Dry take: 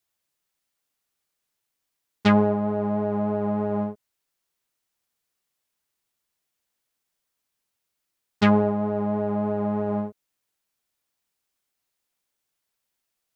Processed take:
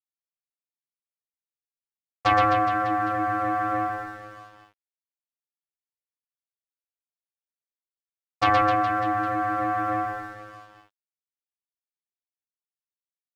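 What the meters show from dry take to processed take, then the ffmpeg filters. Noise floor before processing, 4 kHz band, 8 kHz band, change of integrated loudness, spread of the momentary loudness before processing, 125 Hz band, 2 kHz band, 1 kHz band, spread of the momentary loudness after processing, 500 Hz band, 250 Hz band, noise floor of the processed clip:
−81 dBFS, +1.0 dB, can't be measured, 0.0 dB, 8 LU, −6.5 dB, +7.5 dB, +9.0 dB, 15 LU, −5.0 dB, −8.5 dB, below −85 dBFS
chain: -af "aeval=exprs='val(0)*sin(2*PI*940*n/s)':channel_layout=same,aecho=1:1:120|258|416.7|599.2|809.1:0.631|0.398|0.251|0.158|0.1,aeval=exprs='sgn(val(0))*max(abs(val(0))-0.00237,0)':channel_layout=same"

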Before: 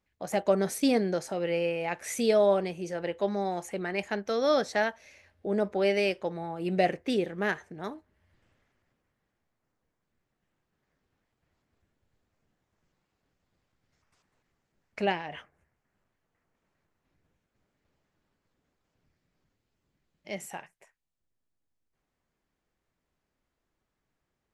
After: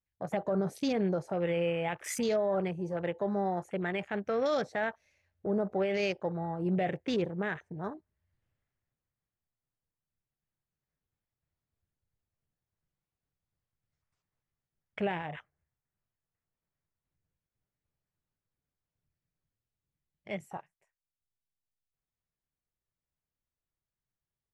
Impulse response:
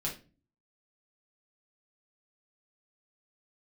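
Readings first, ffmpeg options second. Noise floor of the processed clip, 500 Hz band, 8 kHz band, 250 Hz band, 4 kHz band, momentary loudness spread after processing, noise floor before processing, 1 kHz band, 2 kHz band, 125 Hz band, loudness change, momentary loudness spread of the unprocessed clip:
below −85 dBFS, −4.0 dB, can't be measured, −2.0 dB, −6.0 dB, 11 LU, −83 dBFS, −3.5 dB, −4.0 dB, +2.0 dB, −4.0 dB, 14 LU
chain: -af "alimiter=limit=-21dB:level=0:latency=1:release=31,afwtdn=0.00794,lowshelf=frequency=180:width_type=q:width=1.5:gain=6"

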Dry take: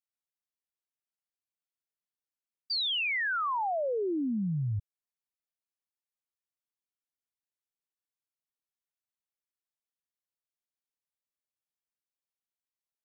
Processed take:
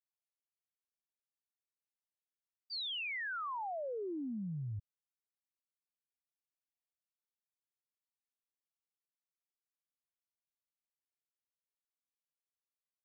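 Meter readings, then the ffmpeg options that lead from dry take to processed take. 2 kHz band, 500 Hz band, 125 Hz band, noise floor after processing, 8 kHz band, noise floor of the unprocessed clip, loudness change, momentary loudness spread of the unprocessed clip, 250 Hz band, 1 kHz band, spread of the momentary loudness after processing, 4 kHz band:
−9.5 dB, −9.5 dB, −9.5 dB, below −85 dBFS, can't be measured, below −85 dBFS, −9.5 dB, 6 LU, −9.5 dB, −9.5 dB, 6 LU, −9.5 dB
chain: -af "agate=range=-33dB:threshold=-15dB:ratio=3:detection=peak,volume=17dB"

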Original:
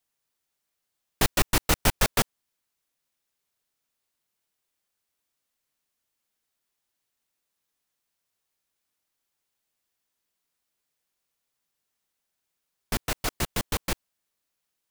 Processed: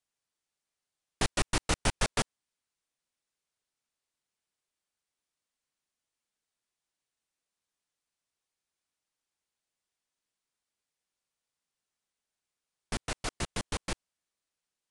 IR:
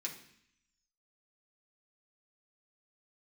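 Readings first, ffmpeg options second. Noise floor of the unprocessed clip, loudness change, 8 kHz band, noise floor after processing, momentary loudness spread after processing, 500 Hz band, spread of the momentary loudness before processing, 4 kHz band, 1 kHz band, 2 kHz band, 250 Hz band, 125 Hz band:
−82 dBFS, −6.5 dB, −6.0 dB, below −85 dBFS, 9 LU, −5.5 dB, 9 LU, −5.5 dB, −5.5 dB, −5.5 dB, −5.5 dB, −5.5 dB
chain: -af "aresample=22050,aresample=44100,volume=-5.5dB"

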